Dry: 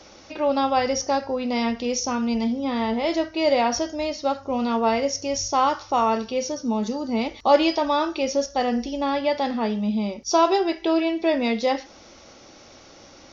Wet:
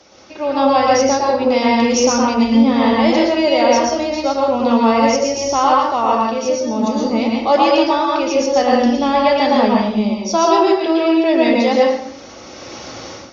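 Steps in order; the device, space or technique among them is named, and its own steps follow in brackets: 5.28–6.22 s: low-pass 5.9 kHz 12 dB/octave; far-field microphone of a smart speaker (reverberation RT60 0.75 s, pre-delay 106 ms, DRR -2.5 dB; high-pass 99 Hz 6 dB/octave; level rider gain up to 14 dB; trim -1 dB; Opus 48 kbps 48 kHz)

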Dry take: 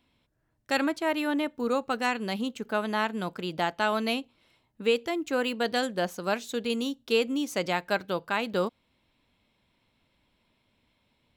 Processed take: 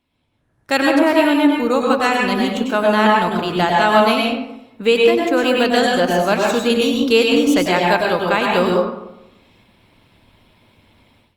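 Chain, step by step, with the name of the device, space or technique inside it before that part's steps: speakerphone in a meeting room (reverberation RT60 0.80 s, pre-delay 94 ms, DRR -1 dB; level rider gain up to 16.5 dB; trim -1 dB; Opus 32 kbps 48 kHz)

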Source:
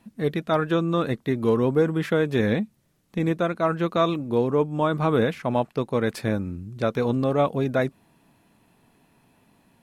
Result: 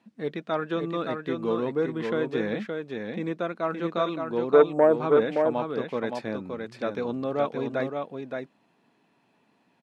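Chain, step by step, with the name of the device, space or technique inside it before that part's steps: 4.53–4.96 s: FFT filter 200 Hz 0 dB, 480 Hz +14 dB, 690 Hz +12 dB, 3.1 kHz -30 dB, 7.8 kHz +10 dB; public-address speaker with an overloaded transformer (transformer saturation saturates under 570 Hz; band-pass 210–5300 Hz); delay 570 ms -5 dB; trim -5 dB

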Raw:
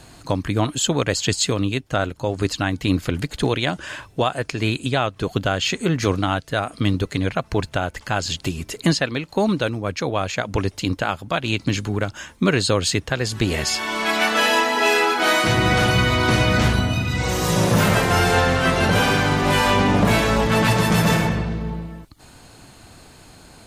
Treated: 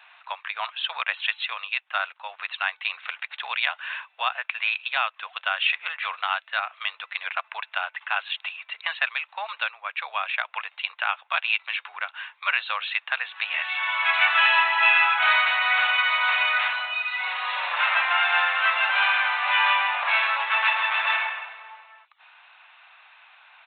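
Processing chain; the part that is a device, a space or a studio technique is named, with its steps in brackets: high-pass 920 Hz 24 dB/octave; musical greeting card (resampled via 8 kHz; high-pass 600 Hz 24 dB/octave; peaking EQ 2.7 kHz +7 dB 0.5 oct); peaking EQ 3.1 kHz -7.5 dB 0.28 oct

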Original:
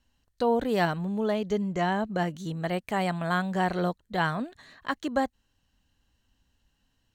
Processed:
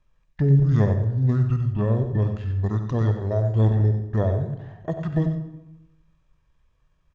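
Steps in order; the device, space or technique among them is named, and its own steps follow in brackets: monster voice (pitch shift -9 st; formant shift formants -5.5 st; bass shelf 200 Hz +9 dB; delay 93 ms -9.5 dB; reverberation RT60 0.90 s, pre-delay 42 ms, DRR 9 dB); 1.17–1.73 s: treble shelf 4.4 kHz +8 dB

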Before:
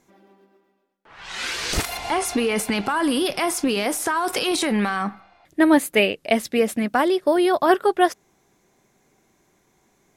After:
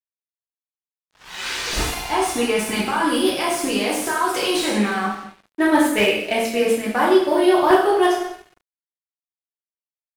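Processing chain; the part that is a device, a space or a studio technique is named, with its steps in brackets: two-slope reverb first 0.77 s, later 2.3 s, from -25 dB, DRR -6.5 dB; early transistor amplifier (crossover distortion -36 dBFS; slew-rate limiter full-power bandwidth 610 Hz); trim -4.5 dB

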